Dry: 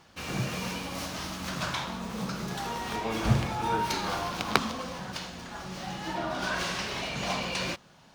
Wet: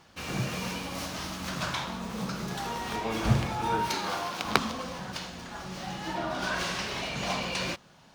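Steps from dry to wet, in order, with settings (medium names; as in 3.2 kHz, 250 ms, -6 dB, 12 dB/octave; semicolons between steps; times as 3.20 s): 3.88–4.43 s: high-pass 150 Hz -> 370 Hz 6 dB/octave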